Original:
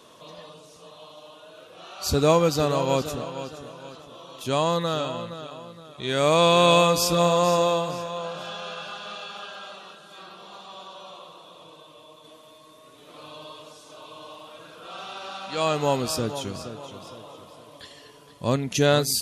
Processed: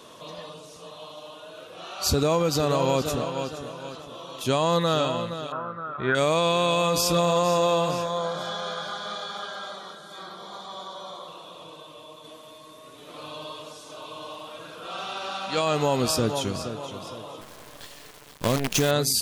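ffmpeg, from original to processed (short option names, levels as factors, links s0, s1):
-filter_complex "[0:a]asettb=1/sr,asplit=3[s0][s1][s2];[s0]atrim=end=5.524[s3];[s1]atrim=start=5.52:end=6.15,asetpts=PTS-STARTPTS,afade=t=in:d=0.004:c=qsin,afade=t=out:st=0.626:d=0.004:c=qsin,lowpass=f=1400:t=q:w=8.6[s4];[s2]atrim=start=6.146[s5];[s3][s4]acrossfade=d=0.004:c1=hsin:c2=qsin[s6];[s6][s5]acrossfade=d=0.004:c1=qsin:c2=hsin,asettb=1/sr,asplit=3[s7][s8][s9];[s7]atrim=end=8.054[s10];[s8]atrim=start=8.05:end=11.28,asetpts=PTS-STARTPTS,afade=t=in:d=0.004:c=qsin,afade=t=out:st=3.226:d=0.004:c=qsin,asuperstop=centerf=2700:order=4:qfactor=3.8[s11];[s9]atrim=start=11.276[s12];[s10][s11]acrossfade=d=0.004:c1=hsin:c2=qsin[s13];[s13][s12]acrossfade=d=0.004:c1=qsin:c2=hsin,asettb=1/sr,asplit=3[s14][s15][s16];[s14]atrim=end=17.414[s17];[s15]atrim=start=17.41:end=18.91,asetpts=PTS-STARTPTS,afade=t=in:d=0.004:c=qsin,afade=t=out:st=1.496:d=0.004:c=qsin,acrusher=bits=5:dc=4:mix=0:aa=0.000001[s18];[s16]atrim=start=18.906[s19];[s17][s18]acrossfade=d=0.004:c1=hsin:c2=qsin[s20];[s20][s19]acrossfade=d=0.004:c1=qsin:c2=hsin,alimiter=limit=0.141:level=0:latency=1:release=98,volume=1.58"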